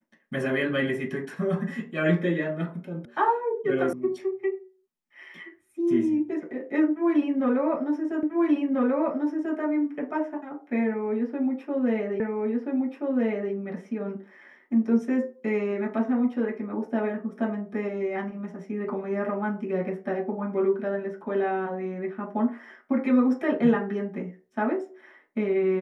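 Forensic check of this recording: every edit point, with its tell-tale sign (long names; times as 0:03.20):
0:03.05: cut off before it has died away
0:03.93: cut off before it has died away
0:08.23: the same again, the last 1.34 s
0:12.20: the same again, the last 1.33 s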